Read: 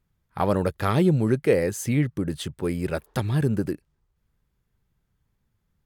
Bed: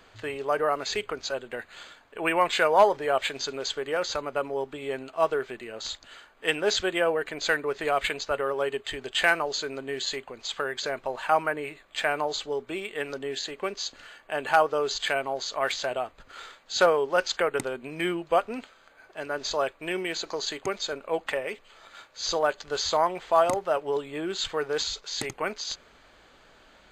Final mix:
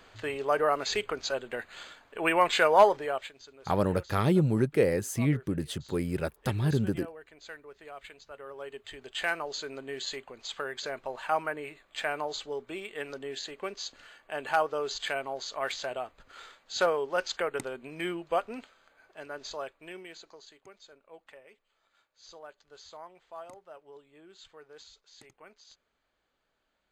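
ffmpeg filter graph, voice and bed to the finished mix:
-filter_complex "[0:a]adelay=3300,volume=-4dB[a];[1:a]volume=14dB,afade=t=out:st=2.85:d=0.47:silence=0.105925,afade=t=in:st=8.27:d=1.49:silence=0.188365,afade=t=out:st=18.58:d=1.91:silence=0.133352[b];[a][b]amix=inputs=2:normalize=0"

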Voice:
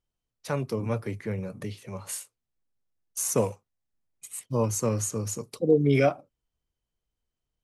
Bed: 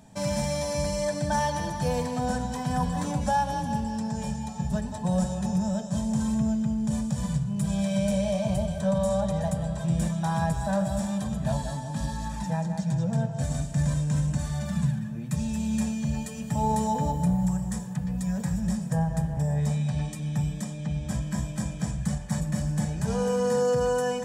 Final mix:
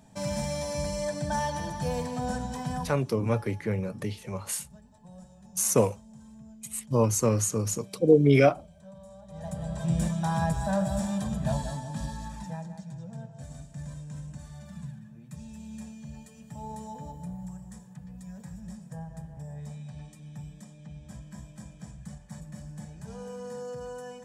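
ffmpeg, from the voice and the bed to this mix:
-filter_complex "[0:a]adelay=2400,volume=2.5dB[a];[1:a]volume=19dB,afade=t=out:st=2.67:d=0.34:silence=0.1,afade=t=in:st=9.27:d=0.62:silence=0.0749894,afade=t=out:st=11.5:d=1.39:silence=0.211349[b];[a][b]amix=inputs=2:normalize=0"

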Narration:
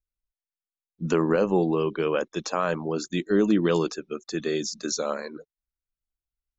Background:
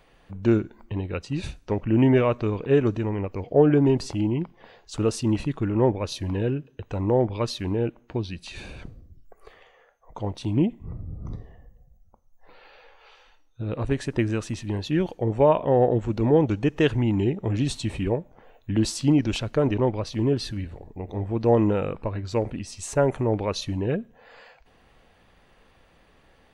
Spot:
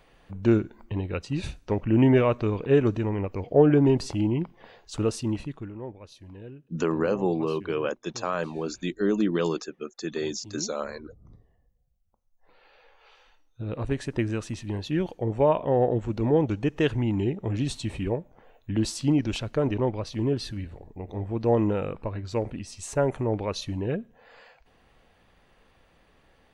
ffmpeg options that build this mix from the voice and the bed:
-filter_complex "[0:a]adelay=5700,volume=-3dB[a];[1:a]volume=14dB,afade=t=out:st=4.87:d=0.92:silence=0.141254,afade=t=in:st=12:d=1.24:silence=0.188365[b];[a][b]amix=inputs=2:normalize=0"

